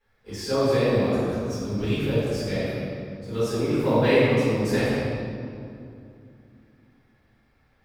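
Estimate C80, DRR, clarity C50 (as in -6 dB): -1.5 dB, -15.0 dB, -4.0 dB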